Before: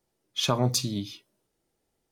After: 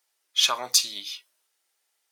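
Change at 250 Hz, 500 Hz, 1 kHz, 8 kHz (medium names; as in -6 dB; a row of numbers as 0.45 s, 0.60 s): -21.0 dB, -8.0 dB, +1.0 dB, +8.0 dB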